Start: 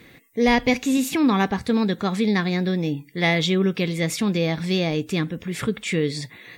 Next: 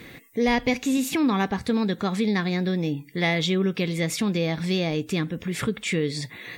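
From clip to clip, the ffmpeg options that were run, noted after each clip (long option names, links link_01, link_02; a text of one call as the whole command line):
ffmpeg -i in.wav -af "acompressor=threshold=-39dB:ratio=1.5,volume=5dB" out.wav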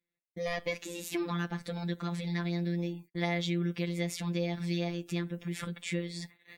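ffmpeg -i in.wav -af "agate=range=-38dB:threshold=-37dB:ratio=16:detection=peak,afftfilt=real='hypot(re,im)*cos(PI*b)':imag='0':win_size=1024:overlap=0.75,volume=-6.5dB" out.wav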